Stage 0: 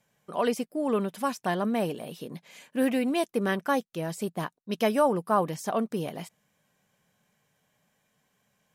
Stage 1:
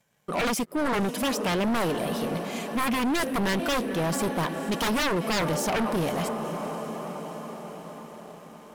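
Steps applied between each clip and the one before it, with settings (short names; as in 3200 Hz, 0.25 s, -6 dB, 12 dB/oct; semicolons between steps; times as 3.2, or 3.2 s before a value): diffused feedback echo 0.502 s, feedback 64%, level -15 dB; wavefolder -26 dBFS; sample leveller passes 2; gain +4 dB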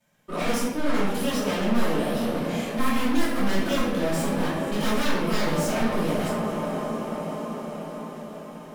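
soft clip -28.5 dBFS, distortion -14 dB; reverb RT60 0.95 s, pre-delay 3 ms, DRR -12 dB; gain -8 dB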